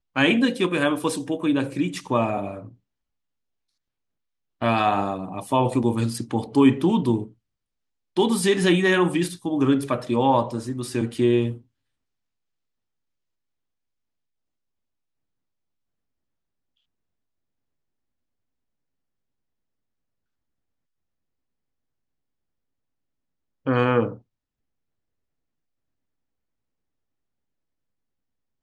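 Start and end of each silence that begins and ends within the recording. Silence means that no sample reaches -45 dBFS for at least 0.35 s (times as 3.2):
2.74–4.61
7.32–8.16
11.61–23.66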